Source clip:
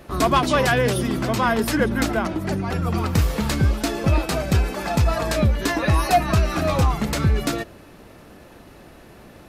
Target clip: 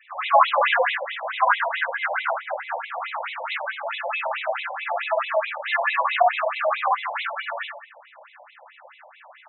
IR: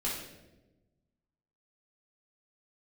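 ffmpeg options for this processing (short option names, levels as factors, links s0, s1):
-filter_complex "[0:a]highpass=440,lowpass=4400[s0];[1:a]atrim=start_sample=2205,atrim=end_sample=6615,asetrate=29988,aresample=44100[s1];[s0][s1]afir=irnorm=-1:irlink=0,afftfilt=real='re*between(b*sr/1024,690*pow(2900/690,0.5+0.5*sin(2*PI*4.6*pts/sr))/1.41,690*pow(2900/690,0.5+0.5*sin(2*PI*4.6*pts/sr))*1.41)':imag='im*between(b*sr/1024,690*pow(2900/690,0.5+0.5*sin(2*PI*4.6*pts/sr))/1.41,690*pow(2900/690,0.5+0.5*sin(2*PI*4.6*pts/sr))*1.41)':win_size=1024:overlap=0.75"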